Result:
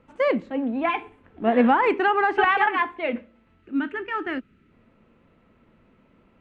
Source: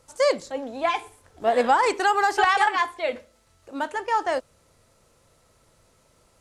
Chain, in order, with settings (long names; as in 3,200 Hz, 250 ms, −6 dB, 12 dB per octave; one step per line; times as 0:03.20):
drawn EQ curve 130 Hz 0 dB, 220 Hz +14 dB, 570 Hz −2 dB, 2,700 Hz +3 dB, 5,200 Hz −22 dB
gain on a spectral selection 0:03.62–0:04.72, 440–1,200 Hz −12 dB
high-frequency loss of the air 66 metres